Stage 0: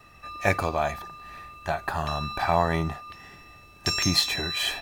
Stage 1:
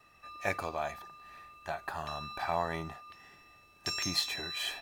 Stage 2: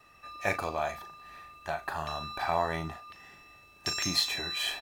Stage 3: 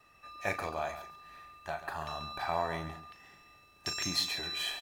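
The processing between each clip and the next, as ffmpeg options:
-af "lowshelf=f=210:g=-8.5,volume=-8.5dB"
-filter_complex "[0:a]asplit=2[a][b];[b]adelay=38,volume=-10dB[c];[a][c]amix=inputs=2:normalize=0,volume=3dB"
-af "aecho=1:1:137:0.251,volume=-4dB"

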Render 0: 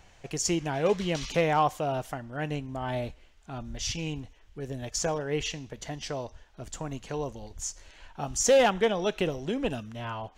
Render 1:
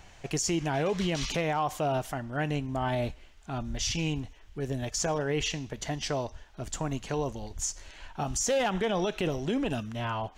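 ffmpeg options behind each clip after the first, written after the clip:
-af "equalizer=f=500:t=o:w=0.21:g=-4.5,alimiter=level_in=0.5dB:limit=-24dB:level=0:latency=1:release=47,volume=-0.5dB,volume=4dB"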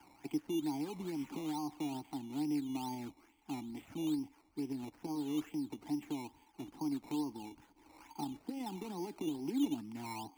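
-filter_complex "[0:a]acrossover=split=100|380|920[a][b][c][d];[a]acompressor=threshold=-45dB:ratio=4[e];[b]acompressor=threshold=-36dB:ratio=4[f];[c]acompressor=threshold=-40dB:ratio=4[g];[d]acompressor=threshold=-47dB:ratio=4[h];[e][f][g][h]amix=inputs=4:normalize=0,asplit=3[i][j][k];[i]bandpass=f=300:t=q:w=8,volume=0dB[l];[j]bandpass=f=870:t=q:w=8,volume=-6dB[m];[k]bandpass=f=2.24k:t=q:w=8,volume=-9dB[n];[l][m][n]amix=inputs=3:normalize=0,acrossover=split=240[o][p];[p]acrusher=samples=11:mix=1:aa=0.000001:lfo=1:lforange=6.6:lforate=2.3[q];[o][q]amix=inputs=2:normalize=0,volume=7.5dB"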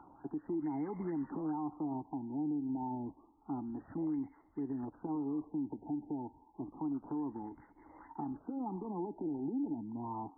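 -af "alimiter=level_in=9.5dB:limit=-24dB:level=0:latency=1:release=68,volume=-9.5dB,acompressor=mode=upward:threshold=-58dB:ratio=2.5,afftfilt=real='re*lt(b*sr/1024,910*pow(2200/910,0.5+0.5*sin(2*PI*0.29*pts/sr)))':imag='im*lt(b*sr/1024,910*pow(2200/910,0.5+0.5*sin(2*PI*0.29*pts/sr)))':win_size=1024:overlap=0.75,volume=3.5dB"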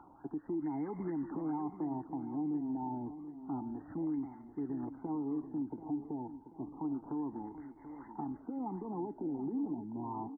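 -af "aecho=1:1:735|1470|2205|2940:0.251|0.105|0.0443|0.0186"

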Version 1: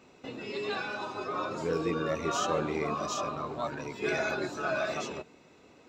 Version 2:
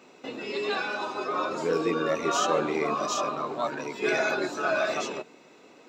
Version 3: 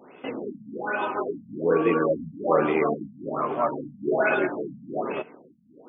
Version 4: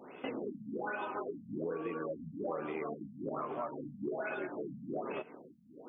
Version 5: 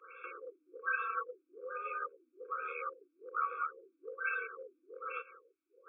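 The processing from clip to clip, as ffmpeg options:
-af "highpass=230,volume=5dB"
-af "afftfilt=real='re*lt(b*sr/1024,240*pow(3600/240,0.5+0.5*sin(2*PI*1.2*pts/sr)))':imag='im*lt(b*sr/1024,240*pow(3600/240,0.5+0.5*sin(2*PI*1.2*pts/sr)))':win_size=1024:overlap=0.75,volume=5dB"
-af "acompressor=threshold=-33dB:ratio=10,volume=-2dB"
-af "highpass=f=590:t=q:w=0.5412,highpass=f=590:t=q:w=1.307,lowpass=f=2.6k:t=q:w=0.5176,lowpass=f=2.6k:t=q:w=0.7071,lowpass=f=2.6k:t=q:w=1.932,afreqshift=88,afftfilt=real='re*eq(mod(floor(b*sr/1024/540),2),0)':imag='im*eq(mod(floor(b*sr/1024/540),2),0)':win_size=1024:overlap=0.75,volume=7.5dB"

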